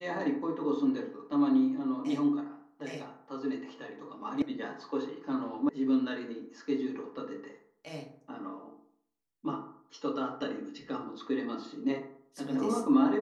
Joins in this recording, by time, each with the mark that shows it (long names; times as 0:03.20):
0:04.42: cut off before it has died away
0:05.69: cut off before it has died away